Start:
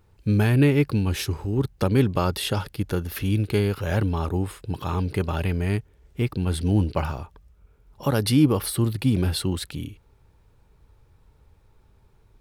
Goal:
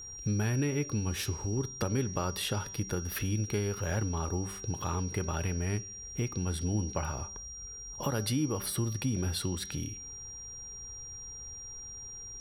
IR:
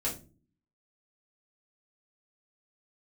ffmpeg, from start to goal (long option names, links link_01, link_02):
-filter_complex "[0:a]equalizer=frequency=1400:width=1.5:gain=2.5,bandreject=frequency=193.3:width_type=h:width=4,bandreject=frequency=386.6:width_type=h:width=4,bandreject=frequency=579.9:width_type=h:width=4,bandreject=frequency=773.2:width_type=h:width=4,bandreject=frequency=966.5:width_type=h:width=4,bandreject=frequency=1159.8:width_type=h:width=4,bandreject=frequency=1353.1:width_type=h:width=4,bandreject=frequency=1546.4:width_type=h:width=4,bandreject=frequency=1739.7:width_type=h:width=4,bandreject=frequency=1933:width_type=h:width=4,bandreject=frequency=2126.3:width_type=h:width=4,bandreject=frequency=2319.6:width_type=h:width=4,bandreject=frequency=2512.9:width_type=h:width=4,bandreject=frequency=2706.2:width_type=h:width=4,bandreject=frequency=2899.5:width_type=h:width=4,bandreject=frequency=3092.8:width_type=h:width=4,bandreject=frequency=3286.1:width_type=h:width=4,bandreject=frequency=3479.4:width_type=h:width=4,bandreject=frequency=3672.7:width_type=h:width=4,bandreject=frequency=3866:width_type=h:width=4,bandreject=frequency=4059.3:width_type=h:width=4,bandreject=frequency=4252.6:width_type=h:width=4,bandreject=frequency=4445.9:width_type=h:width=4,bandreject=frequency=4639.2:width_type=h:width=4,bandreject=frequency=4832.5:width_type=h:width=4,bandreject=frequency=5025.8:width_type=h:width=4,bandreject=frequency=5219.1:width_type=h:width=4,bandreject=frequency=5412.4:width_type=h:width=4,bandreject=frequency=5605.7:width_type=h:width=4,bandreject=frequency=5799:width_type=h:width=4,bandreject=frequency=5992.3:width_type=h:width=4,bandreject=frequency=6185.6:width_type=h:width=4,bandreject=frequency=6378.9:width_type=h:width=4,bandreject=frequency=6572.2:width_type=h:width=4,bandreject=frequency=6765.5:width_type=h:width=4,bandreject=frequency=6958.8:width_type=h:width=4,acompressor=threshold=-39dB:ratio=2.5,aeval=exprs='val(0)+0.00501*sin(2*PI*5700*n/s)':channel_layout=same,asplit=2[link_01][link_02];[1:a]atrim=start_sample=2205,asetrate=37926,aresample=44100[link_03];[link_02][link_03]afir=irnorm=-1:irlink=0,volume=-25.5dB[link_04];[link_01][link_04]amix=inputs=2:normalize=0,volume=3dB"